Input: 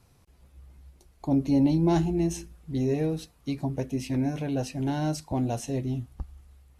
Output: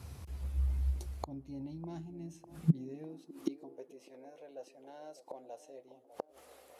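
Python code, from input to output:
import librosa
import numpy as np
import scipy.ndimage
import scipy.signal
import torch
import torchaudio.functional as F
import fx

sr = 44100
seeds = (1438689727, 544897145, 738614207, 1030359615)

y = fx.gate_flip(x, sr, shuts_db=-31.0, range_db=-31)
y = fx.echo_wet_bandpass(y, sr, ms=601, feedback_pct=63, hz=490.0, wet_db=-13.5)
y = fx.filter_sweep_highpass(y, sr, from_hz=68.0, to_hz=520.0, start_s=1.6, end_s=4.08, q=3.5)
y = F.gain(torch.from_numpy(y), 8.5).numpy()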